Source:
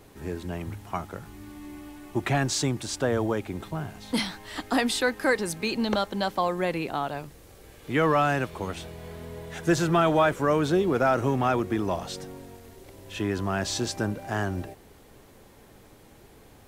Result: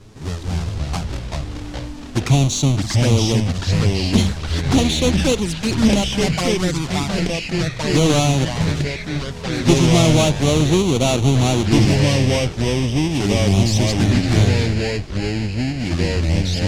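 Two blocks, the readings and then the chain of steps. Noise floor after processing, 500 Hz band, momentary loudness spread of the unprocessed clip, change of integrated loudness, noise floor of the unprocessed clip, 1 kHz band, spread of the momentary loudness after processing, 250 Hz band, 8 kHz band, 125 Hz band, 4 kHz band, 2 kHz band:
-30 dBFS, +6.0 dB, 18 LU, +9.0 dB, -53 dBFS, +1.5 dB, 10 LU, +11.0 dB, +11.5 dB, +16.5 dB, +12.5 dB, +5.0 dB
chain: half-waves squared off; tone controls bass +8 dB, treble +12 dB; envelope flanger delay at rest 11.3 ms, full sweep at -13.5 dBFS; LPF 5800 Hz 12 dB/oct; echoes that change speed 0.209 s, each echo -3 st, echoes 3; gain +1 dB

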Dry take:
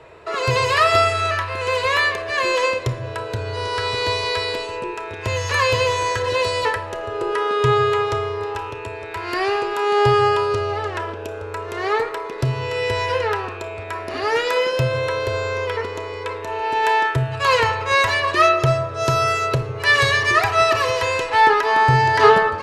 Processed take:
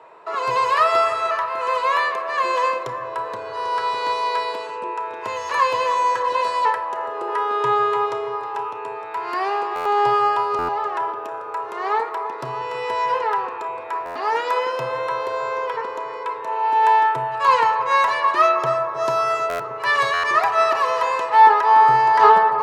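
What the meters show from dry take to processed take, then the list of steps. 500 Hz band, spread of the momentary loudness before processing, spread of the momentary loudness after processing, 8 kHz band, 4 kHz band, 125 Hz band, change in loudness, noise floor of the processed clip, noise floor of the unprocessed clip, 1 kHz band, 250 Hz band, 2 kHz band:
-4.0 dB, 13 LU, 14 LU, n/a, -8.0 dB, -19.5 dB, -0.5 dB, -32 dBFS, -32 dBFS, +3.5 dB, -8.0 dB, -5.0 dB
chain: HPF 170 Hz 24 dB/oct; bell 960 Hz +14 dB 1.1 oct; on a send: analogue delay 0.314 s, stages 4096, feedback 67%, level -12.5 dB; on the sum: stuck buffer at 9.75/10.58/14.05/19.49/20.13, samples 512; gain -9 dB

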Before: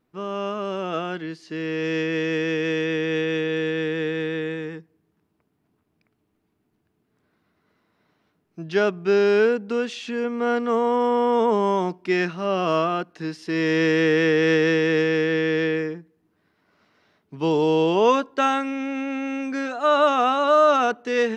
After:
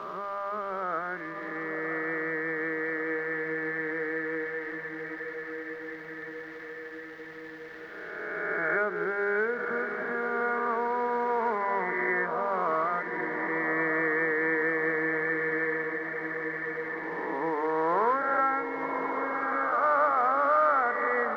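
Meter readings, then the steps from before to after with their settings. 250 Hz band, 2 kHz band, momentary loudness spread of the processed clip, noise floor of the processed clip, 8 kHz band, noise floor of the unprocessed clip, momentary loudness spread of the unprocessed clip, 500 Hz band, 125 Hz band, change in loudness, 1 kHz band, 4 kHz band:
-12.0 dB, -0.5 dB, 14 LU, -42 dBFS, n/a, -72 dBFS, 10 LU, -9.0 dB, -16.0 dB, -6.5 dB, -3.0 dB, under -20 dB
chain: spectral swells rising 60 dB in 2.04 s; notches 50/100/150/200/250/300/350/400/450 Hz; FFT band-pass 160–2300 Hz; tilt shelf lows -9.5 dB, about 690 Hz; crossover distortion -48.5 dBFS; companded quantiser 6-bit; added noise blue -48 dBFS; crackle 440/s -36 dBFS; air absorption 280 m; diffused feedback echo 1.111 s, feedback 59%, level -8.5 dB; three-band squash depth 40%; gain -7 dB

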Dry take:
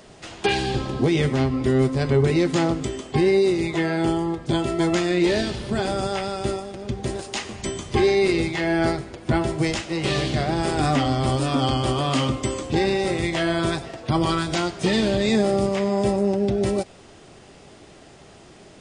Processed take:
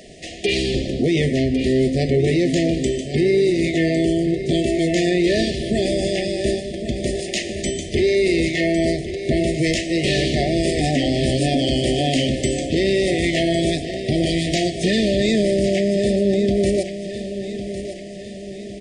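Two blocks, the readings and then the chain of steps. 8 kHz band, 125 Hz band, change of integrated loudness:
+4.5 dB, +1.5 dB, +2.5 dB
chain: bell 120 Hz -11.5 dB 0.23 oct; in parallel at -3 dB: negative-ratio compressor -23 dBFS; on the sum: soft clip -6.5 dBFS, distortion -27 dB; brick-wall FIR band-stop 750–1700 Hz; feedback echo 1.105 s, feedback 50%, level -11 dB

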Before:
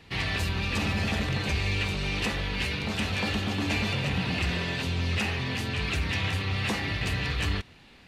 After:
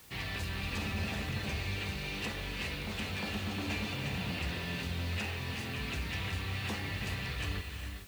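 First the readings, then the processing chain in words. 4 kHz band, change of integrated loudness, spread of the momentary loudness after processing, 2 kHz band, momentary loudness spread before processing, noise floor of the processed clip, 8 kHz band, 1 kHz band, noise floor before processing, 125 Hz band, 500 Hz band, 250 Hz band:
-8.0 dB, -8.0 dB, 2 LU, -8.0 dB, 2 LU, -41 dBFS, -6.5 dB, -8.0 dB, -53 dBFS, -8.0 dB, -8.0 dB, -8.0 dB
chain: non-linear reverb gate 0.46 s rising, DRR 5 dB; requantised 8-bit, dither triangular; gain -9 dB

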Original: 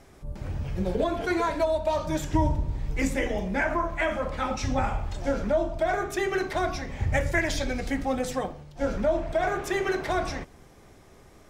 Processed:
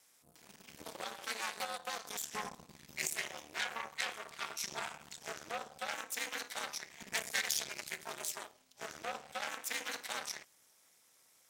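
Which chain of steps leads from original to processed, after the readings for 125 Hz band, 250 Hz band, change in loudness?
-31.0 dB, -26.5 dB, -12.0 dB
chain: ring modulator 110 Hz; added harmonics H 3 -22 dB, 6 -17 dB, 7 -30 dB, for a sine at -12.5 dBFS; differentiator; gain +6.5 dB

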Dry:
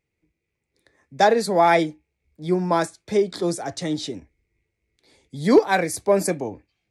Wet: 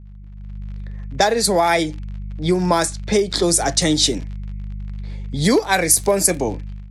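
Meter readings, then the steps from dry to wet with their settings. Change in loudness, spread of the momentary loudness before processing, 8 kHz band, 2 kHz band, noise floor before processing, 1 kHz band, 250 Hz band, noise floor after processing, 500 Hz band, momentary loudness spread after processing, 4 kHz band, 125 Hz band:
+3.5 dB, 12 LU, +15.5 dB, +3.5 dB, -80 dBFS, +0.5 dB, +3.0 dB, -37 dBFS, +1.0 dB, 18 LU, +12.0 dB, +7.0 dB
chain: high shelf 7700 Hz +10 dB; buzz 50 Hz, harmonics 4, -38 dBFS -7 dB/oct; compressor 5:1, threshold -23 dBFS, peak gain reduction 13 dB; crackle 69/s -40 dBFS; AGC gain up to 11 dB; high shelf 2300 Hz +7.5 dB; low-pass opened by the level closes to 1500 Hz, open at -10 dBFS; maximiser -0.5 dB; gain -1 dB

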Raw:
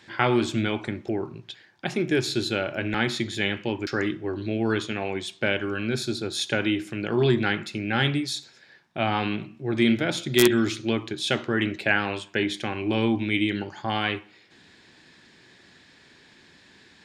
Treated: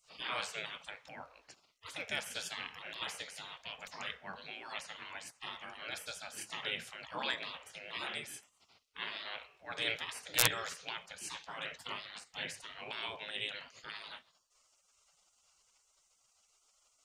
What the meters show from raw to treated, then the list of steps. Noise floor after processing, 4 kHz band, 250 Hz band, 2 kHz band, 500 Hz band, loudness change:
-74 dBFS, -9.0 dB, -31.5 dB, -12.5 dB, -22.0 dB, -14.0 dB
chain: dynamic EQ 150 Hz, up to -3 dB, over -44 dBFS, Q 2.7; spectral gate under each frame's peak -20 dB weak; gain -2 dB

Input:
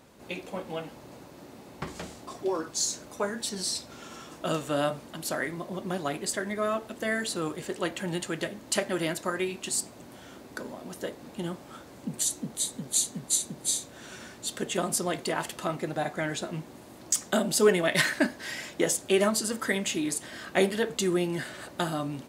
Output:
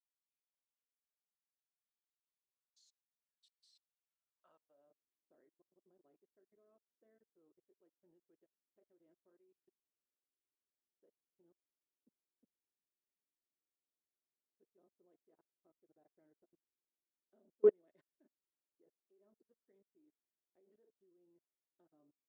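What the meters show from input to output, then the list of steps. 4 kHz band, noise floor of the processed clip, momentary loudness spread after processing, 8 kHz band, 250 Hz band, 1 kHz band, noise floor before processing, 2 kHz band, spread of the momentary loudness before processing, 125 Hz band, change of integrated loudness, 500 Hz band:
under -40 dB, under -85 dBFS, 0 LU, under -40 dB, -30.0 dB, under -35 dB, -49 dBFS, under -40 dB, 16 LU, under -35 dB, -2.5 dB, -13.5 dB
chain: band-pass sweep 3500 Hz -> 390 Hz, 3.89–4.94; level quantiser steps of 20 dB; upward expander 2.5:1, over -52 dBFS; gain -1.5 dB

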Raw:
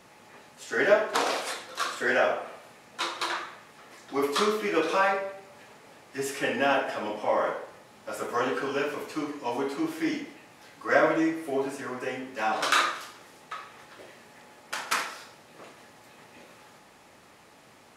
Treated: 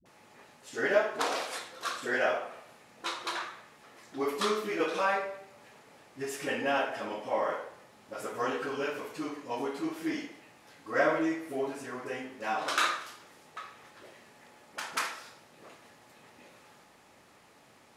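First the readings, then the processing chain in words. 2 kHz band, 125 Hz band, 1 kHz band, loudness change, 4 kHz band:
-4.5 dB, -4.5 dB, -4.5 dB, -4.5 dB, -4.5 dB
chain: dispersion highs, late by 57 ms, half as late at 370 Hz; gain -4.5 dB

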